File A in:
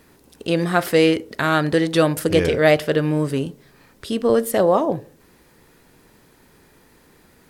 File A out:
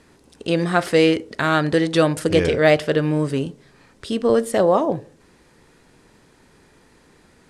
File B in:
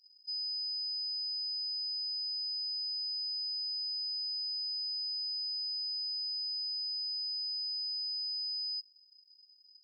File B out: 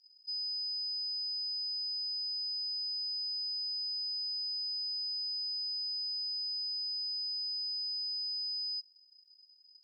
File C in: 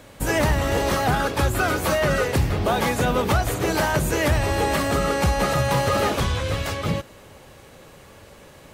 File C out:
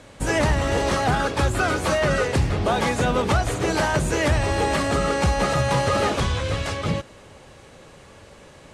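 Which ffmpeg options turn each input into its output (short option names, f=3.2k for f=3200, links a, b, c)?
-af "lowpass=f=9.6k:w=0.5412,lowpass=f=9.6k:w=1.3066"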